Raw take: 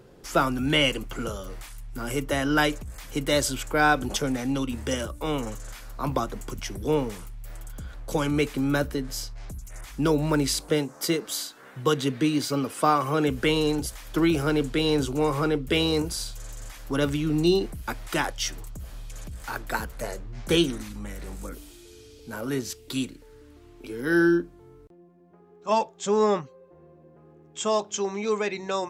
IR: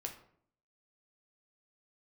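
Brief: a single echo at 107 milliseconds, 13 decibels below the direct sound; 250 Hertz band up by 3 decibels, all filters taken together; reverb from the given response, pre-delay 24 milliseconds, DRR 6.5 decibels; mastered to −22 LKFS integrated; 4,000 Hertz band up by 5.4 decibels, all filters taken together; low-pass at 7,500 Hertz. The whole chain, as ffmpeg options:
-filter_complex "[0:a]lowpass=7500,equalizer=frequency=250:width_type=o:gain=4,equalizer=frequency=4000:width_type=o:gain=7.5,aecho=1:1:107:0.224,asplit=2[link_01][link_02];[1:a]atrim=start_sample=2205,adelay=24[link_03];[link_02][link_03]afir=irnorm=-1:irlink=0,volume=-5dB[link_04];[link_01][link_04]amix=inputs=2:normalize=0,volume=0.5dB"

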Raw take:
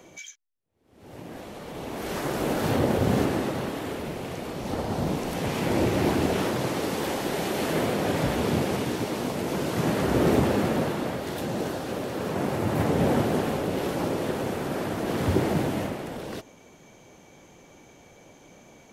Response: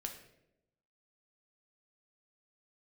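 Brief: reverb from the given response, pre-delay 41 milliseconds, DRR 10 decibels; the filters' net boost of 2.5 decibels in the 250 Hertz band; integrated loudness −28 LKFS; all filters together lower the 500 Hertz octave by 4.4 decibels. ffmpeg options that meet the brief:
-filter_complex "[0:a]equalizer=frequency=250:width_type=o:gain=5.5,equalizer=frequency=500:width_type=o:gain=-8,asplit=2[link_01][link_02];[1:a]atrim=start_sample=2205,adelay=41[link_03];[link_02][link_03]afir=irnorm=-1:irlink=0,volume=-8.5dB[link_04];[link_01][link_04]amix=inputs=2:normalize=0,volume=-1.5dB"

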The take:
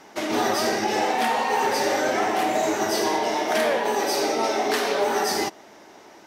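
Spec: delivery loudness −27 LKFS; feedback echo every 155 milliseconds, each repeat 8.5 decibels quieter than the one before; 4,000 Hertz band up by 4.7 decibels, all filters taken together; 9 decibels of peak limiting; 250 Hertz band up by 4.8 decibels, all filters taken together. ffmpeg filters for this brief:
ffmpeg -i in.wav -af "equalizer=frequency=250:width_type=o:gain=6.5,equalizer=frequency=4000:width_type=o:gain=6,alimiter=limit=-18.5dB:level=0:latency=1,aecho=1:1:155|310|465|620:0.376|0.143|0.0543|0.0206,volume=-1dB" out.wav

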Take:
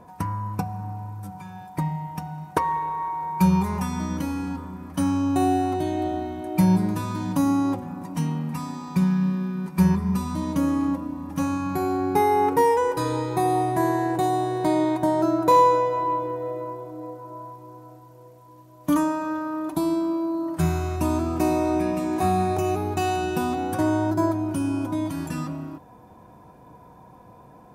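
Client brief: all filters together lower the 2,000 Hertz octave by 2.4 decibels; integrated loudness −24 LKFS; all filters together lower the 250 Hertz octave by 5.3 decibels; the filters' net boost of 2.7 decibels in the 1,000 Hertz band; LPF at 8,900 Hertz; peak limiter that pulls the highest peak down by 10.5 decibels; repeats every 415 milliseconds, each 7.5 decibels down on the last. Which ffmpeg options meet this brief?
ffmpeg -i in.wav -af "lowpass=8900,equalizer=frequency=250:width_type=o:gain=-8,equalizer=frequency=1000:width_type=o:gain=4.5,equalizer=frequency=2000:width_type=o:gain=-5,alimiter=limit=-16.5dB:level=0:latency=1,aecho=1:1:415|830|1245|1660|2075:0.422|0.177|0.0744|0.0312|0.0131,volume=2.5dB" out.wav

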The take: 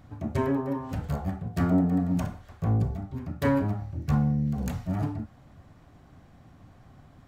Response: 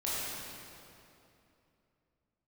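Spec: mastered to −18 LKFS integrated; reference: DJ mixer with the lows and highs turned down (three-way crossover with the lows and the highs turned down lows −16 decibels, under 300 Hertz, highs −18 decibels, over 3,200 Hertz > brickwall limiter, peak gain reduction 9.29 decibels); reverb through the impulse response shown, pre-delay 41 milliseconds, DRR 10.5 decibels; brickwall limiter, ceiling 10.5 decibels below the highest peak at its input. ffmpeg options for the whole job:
-filter_complex "[0:a]alimiter=limit=-22.5dB:level=0:latency=1,asplit=2[link_01][link_02];[1:a]atrim=start_sample=2205,adelay=41[link_03];[link_02][link_03]afir=irnorm=-1:irlink=0,volume=-17dB[link_04];[link_01][link_04]amix=inputs=2:normalize=0,acrossover=split=300 3200:gain=0.158 1 0.126[link_05][link_06][link_07];[link_05][link_06][link_07]amix=inputs=3:normalize=0,volume=25dB,alimiter=limit=-8dB:level=0:latency=1"

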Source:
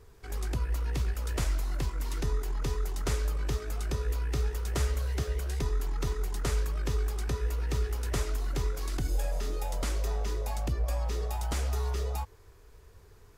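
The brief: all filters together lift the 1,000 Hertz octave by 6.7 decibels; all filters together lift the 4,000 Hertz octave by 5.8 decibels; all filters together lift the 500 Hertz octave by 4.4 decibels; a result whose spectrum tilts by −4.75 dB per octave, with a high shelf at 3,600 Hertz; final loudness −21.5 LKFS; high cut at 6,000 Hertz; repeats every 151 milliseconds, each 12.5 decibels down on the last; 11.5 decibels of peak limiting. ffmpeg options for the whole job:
ffmpeg -i in.wav -af "lowpass=6000,equalizer=frequency=500:width_type=o:gain=4,equalizer=frequency=1000:width_type=o:gain=6.5,highshelf=frequency=3600:gain=6.5,equalizer=frequency=4000:width_type=o:gain=3.5,alimiter=level_in=1.5dB:limit=-24dB:level=0:latency=1,volume=-1.5dB,aecho=1:1:151|302|453:0.237|0.0569|0.0137,volume=13.5dB" out.wav

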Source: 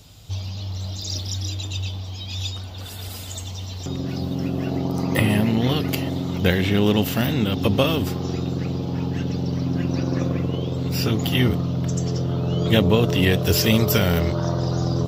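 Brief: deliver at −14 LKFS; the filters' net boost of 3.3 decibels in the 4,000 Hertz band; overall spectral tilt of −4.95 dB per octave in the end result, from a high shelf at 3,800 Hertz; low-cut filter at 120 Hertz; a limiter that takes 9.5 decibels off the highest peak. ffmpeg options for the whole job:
ffmpeg -i in.wav -af "highpass=120,highshelf=frequency=3800:gain=-6.5,equalizer=frequency=4000:width_type=o:gain=8.5,volume=11dB,alimiter=limit=-0.5dB:level=0:latency=1" out.wav

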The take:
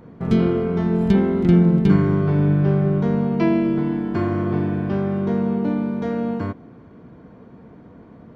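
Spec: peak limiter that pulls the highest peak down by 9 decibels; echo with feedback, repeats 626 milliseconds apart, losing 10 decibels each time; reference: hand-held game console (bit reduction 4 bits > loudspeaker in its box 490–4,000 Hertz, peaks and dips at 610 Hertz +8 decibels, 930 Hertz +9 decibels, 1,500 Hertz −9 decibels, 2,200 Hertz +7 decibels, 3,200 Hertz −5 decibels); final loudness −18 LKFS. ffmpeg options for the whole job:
ffmpeg -i in.wav -af "alimiter=limit=-13dB:level=0:latency=1,aecho=1:1:626|1252|1878|2504:0.316|0.101|0.0324|0.0104,acrusher=bits=3:mix=0:aa=0.000001,highpass=490,equalizer=frequency=610:width_type=q:width=4:gain=8,equalizer=frequency=930:width_type=q:width=4:gain=9,equalizer=frequency=1500:width_type=q:width=4:gain=-9,equalizer=frequency=2200:width_type=q:width=4:gain=7,equalizer=frequency=3200:width_type=q:width=4:gain=-5,lowpass=frequency=4000:width=0.5412,lowpass=frequency=4000:width=1.3066,volume=6dB" out.wav

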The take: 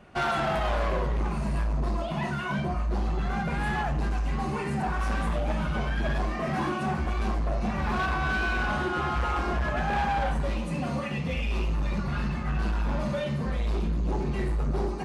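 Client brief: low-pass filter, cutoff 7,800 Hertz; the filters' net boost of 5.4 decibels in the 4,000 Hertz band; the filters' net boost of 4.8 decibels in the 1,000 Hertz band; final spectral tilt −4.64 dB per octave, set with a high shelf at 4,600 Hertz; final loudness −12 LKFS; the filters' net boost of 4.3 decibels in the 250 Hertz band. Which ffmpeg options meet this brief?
ffmpeg -i in.wav -af "lowpass=7800,equalizer=frequency=250:width_type=o:gain=5.5,equalizer=frequency=1000:width_type=o:gain=5.5,equalizer=frequency=4000:width_type=o:gain=3.5,highshelf=frequency=4600:gain=7.5,volume=14dB" out.wav

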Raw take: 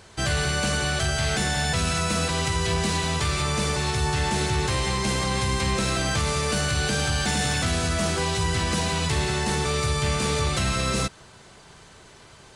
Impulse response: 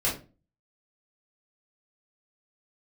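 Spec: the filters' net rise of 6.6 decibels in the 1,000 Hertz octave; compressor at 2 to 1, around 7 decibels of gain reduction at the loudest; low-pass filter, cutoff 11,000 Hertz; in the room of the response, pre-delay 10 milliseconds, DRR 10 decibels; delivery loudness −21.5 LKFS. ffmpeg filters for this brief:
-filter_complex "[0:a]lowpass=11000,equalizer=frequency=1000:width_type=o:gain=8,acompressor=threshold=-32dB:ratio=2,asplit=2[link_01][link_02];[1:a]atrim=start_sample=2205,adelay=10[link_03];[link_02][link_03]afir=irnorm=-1:irlink=0,volume=-19.5dB[link_04];[link_01][link_04]amix=inputs=2:normalize=0,volume=7dB"

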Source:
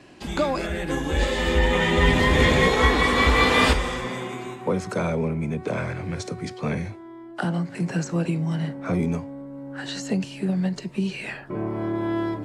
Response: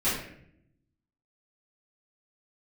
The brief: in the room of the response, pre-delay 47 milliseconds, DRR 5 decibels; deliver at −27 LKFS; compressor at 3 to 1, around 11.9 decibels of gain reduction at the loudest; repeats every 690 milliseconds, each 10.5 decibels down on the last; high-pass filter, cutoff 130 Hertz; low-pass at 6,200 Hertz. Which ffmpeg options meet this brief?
-filter_complex "[0:a]highpass=130,lowpass=6200,acompressor=threshold=-32dB:ratio=3,aecho=1:1:690|1380|2070:0.299|0.0896|0.0269,asplit=2[link_01][link_02];[1:a]atrim=start_sample=2205,adelay=47[link_03];[link_02][link_03]afir=irnorm=-1:irlink=0,volume=-16dB[link_04];[link_01][link_04]amix=inputs=2:normalize=0,volume=4dB"

